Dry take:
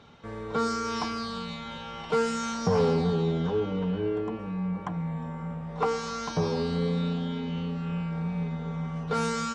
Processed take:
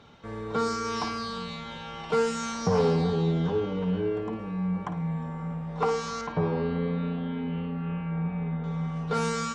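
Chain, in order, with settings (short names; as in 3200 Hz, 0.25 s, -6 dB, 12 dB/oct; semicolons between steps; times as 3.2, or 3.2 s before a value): 6.21–8.64 LPF 2700 Hz 24 dB/oct; flutter echo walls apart 9.4 m, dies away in 0.3 s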